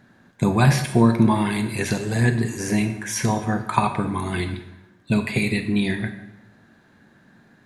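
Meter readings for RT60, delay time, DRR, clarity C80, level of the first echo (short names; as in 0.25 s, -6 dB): 0.90 s, none, 8.5 dB, 12.0 dB, none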